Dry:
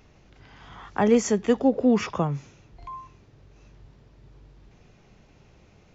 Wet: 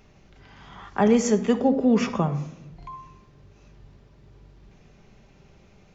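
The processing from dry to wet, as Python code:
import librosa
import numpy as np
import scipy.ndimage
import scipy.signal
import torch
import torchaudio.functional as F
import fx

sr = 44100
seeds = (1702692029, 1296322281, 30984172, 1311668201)

y = fx.room_shoebox(x, sr, seeds[0], volume_m3=2700.0, walls='furnished', distance_m=1.2)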